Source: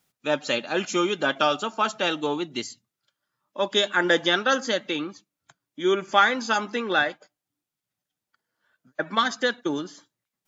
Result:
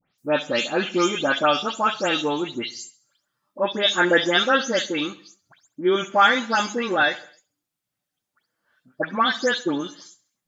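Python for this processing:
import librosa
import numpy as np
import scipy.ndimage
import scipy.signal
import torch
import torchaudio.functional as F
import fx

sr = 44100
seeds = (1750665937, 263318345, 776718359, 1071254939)

y = fx.spec_delay(x, sr, highs='late', ms=179)
y = fx.echo_feedback(y, sr, ms=67, feedback_pct=49, wet_db=-19.0)
y = y * librosa.db_to_amplitude(3.0)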